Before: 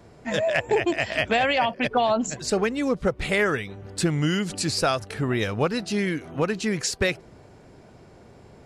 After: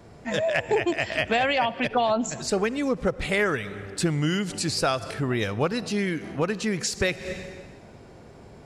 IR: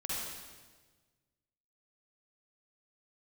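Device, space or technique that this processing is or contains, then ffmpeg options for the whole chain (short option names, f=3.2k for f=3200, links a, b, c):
ducked reverb: -filter_complex "[0:a]asplit=3[a][b][c];[1:a]atrim=start_sample=2205[d];[b][d]afir=irnorm=-1:irlink=0[e];[c]apad=whole_len=381531[f];[e][f]sidechaincompress=threshold=-43dB:ratio=6:attack=6.6:release=116,volume=-5dB[g];[a][g]amix=inputs=2:normalize=0,volume=-1.5dB"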